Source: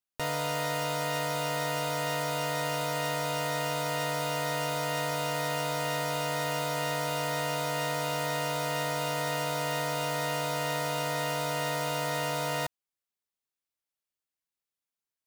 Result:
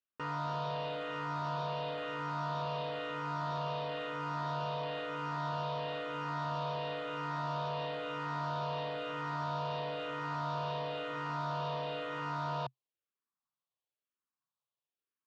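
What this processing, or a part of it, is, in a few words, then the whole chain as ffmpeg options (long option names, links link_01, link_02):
barber-pole phaser into a guitar amplifier: -filter_complex "[0:a]asplit=2[link_01][link_02];[link_02]afreqshift=-1[link_03];[link_01][link_03]amix=inputs=2:normalize=1,asoftclip=type=tanh:threshold=-34dB,highpass=110,equalizer=frequency=130:width_type=q:width=4:gain=7,equalizer=frequency=1100:width_type=q:width=4:gain=9,equalizer=frequency=2100:width_type=q:width=4:gain=-10,lowpass=frequency=3800:width=0.5412,lowpass=frequency=3800:width=1.3066"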